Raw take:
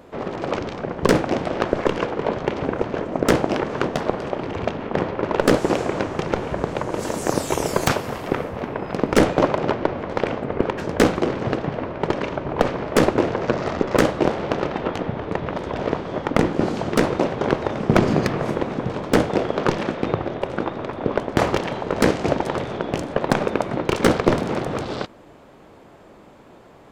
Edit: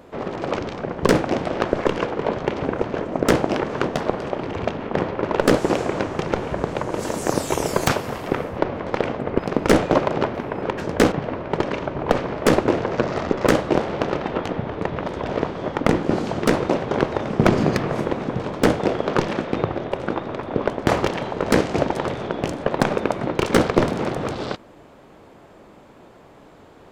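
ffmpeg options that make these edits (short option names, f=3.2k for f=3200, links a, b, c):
-filter_complex "[0:a]asplit=6[a][b][c][d][e][f];[a]atrim=end=8.592[g];[b]atrim=start=9.818:end=10.622[h];[c]atrim=start=8.858:end=9.822[i];[d]atrim=start=8.588:end=8.862[j];[e]atrim=start=10.618:end=11.122[k];[f]atrim=start=11.618[l];[g][h]acrossfade=d=0.004:c1=hsin:c2=hsin[m];[m][i]acrossfade=d=0.004:c1=hsin:c2=hsin[n];[n][j]acrossfade=d=0.004:c1=hsin:c2=hsin[o];[o][k]acrossfade=d=0.004:c1=hsin:c2=hsin[p];[p][l]acrossfade=d=0.004:c1=hsin:c2=hsin"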